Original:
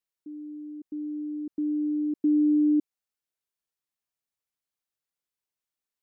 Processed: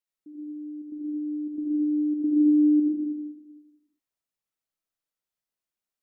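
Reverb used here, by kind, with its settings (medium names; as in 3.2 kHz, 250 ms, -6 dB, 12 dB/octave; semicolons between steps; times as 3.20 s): algorithmic reverb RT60 1 s, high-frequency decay 0.25×, pre-delay 30 ms, DRR -2.5 dB; trim -4.5 dB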